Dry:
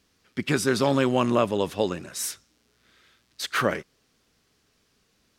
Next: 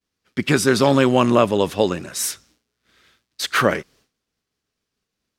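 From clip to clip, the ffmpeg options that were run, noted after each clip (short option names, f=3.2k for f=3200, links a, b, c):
-af "agate=range=-33dB:threshold=-55dB:ratio=3:detection=peak,volume=6.5dB"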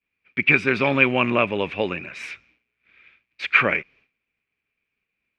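-af "lowpass=f=2.4k:t=q:w=13,volume=-6.5dB"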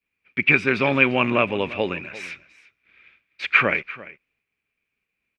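-af "aecho=1:1:344:0.119"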